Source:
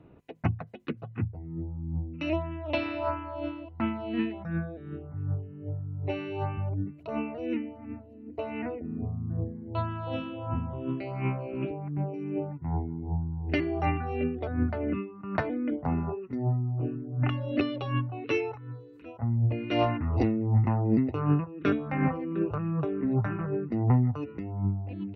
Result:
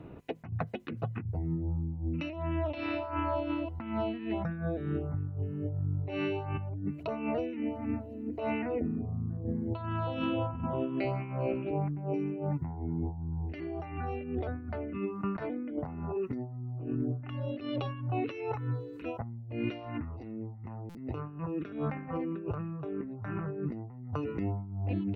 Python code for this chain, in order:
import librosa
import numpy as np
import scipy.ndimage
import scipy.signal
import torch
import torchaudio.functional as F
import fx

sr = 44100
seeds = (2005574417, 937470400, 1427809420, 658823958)

y = fx.highpass(x, sr, hz=180.0, slope=12, at=(10.64, 11.05))
y = fx.over_compress(y, sr, threshold_db=-37.0, ratio=-1.0)
y = fx.buffer_glitch(y, sr, at_s=(20.89,), block=256, repeats=9)
y = y * librosa.db_to_amplitude(1.5)